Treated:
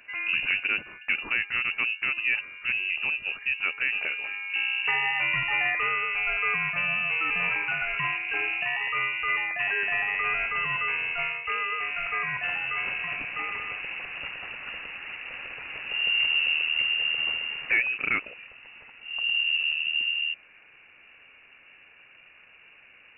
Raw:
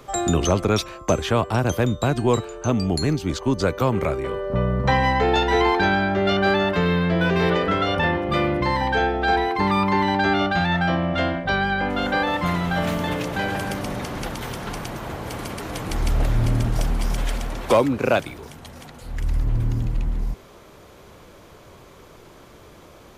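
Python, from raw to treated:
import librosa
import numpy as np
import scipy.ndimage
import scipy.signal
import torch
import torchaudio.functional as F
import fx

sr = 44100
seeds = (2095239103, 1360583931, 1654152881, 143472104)

y = fx.delta_mod(x, sr, bps=32000, step_db=-27.0, at=(9.84, 11.14))
y = fx.freq_invert(y, sr, carrier_hz=2800)
y = y * librosa.db_to_amplitude(-7.5)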